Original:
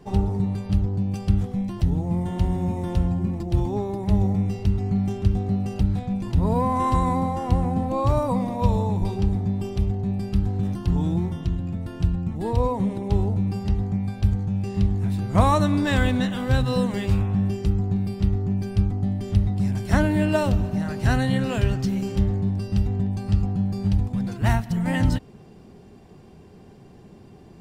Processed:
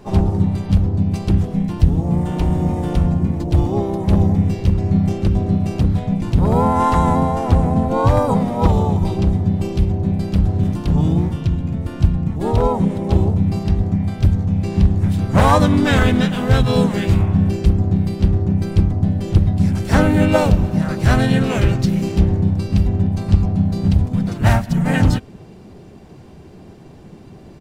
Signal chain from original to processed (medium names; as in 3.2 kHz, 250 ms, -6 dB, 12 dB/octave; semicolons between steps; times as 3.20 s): wavefolder -11.5 dBFS; harmony voices -3 st -3 dB, +5 st -13 dB; trim +5 dB